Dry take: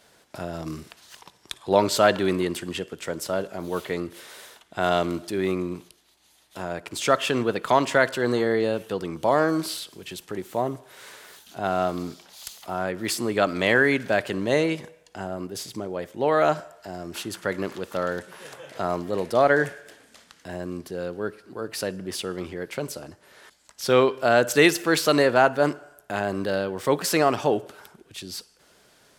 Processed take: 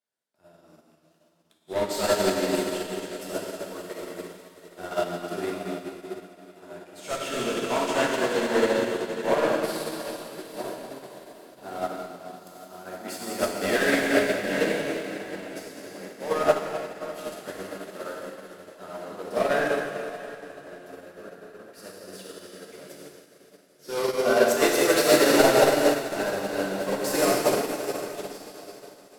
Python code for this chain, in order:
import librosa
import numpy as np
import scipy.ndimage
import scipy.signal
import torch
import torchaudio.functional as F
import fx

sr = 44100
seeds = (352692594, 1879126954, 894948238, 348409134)

y = scipy.signal.sosfilt(scipy.signal.butter(2, 160.0, 'highpass', fs=sr, output='sos'), x)
y = fx.high_shelf(y, sr, hz=11000.0, db=8.0)
y = np.clip(10.0 ** (16.5 / 20.0) * y, -1.0, 1.0) / 10.0 ** (16.5 / 20.0)
y = fx.echo_diffused(y, sr, ms=760, feedback_pct=66, wet_db=-10.0)
y = fx.rev_plate(y, sr, seeds[0], rt60_s=4.8, hf_ratio=1.0, predelay_ms=0, drr_db=-7.0)
y = fx.upward_expand(y, sr, threshold_db=-35.0, expansion=2.5)
y = y * librosa.db_to_amplitude(-2.0)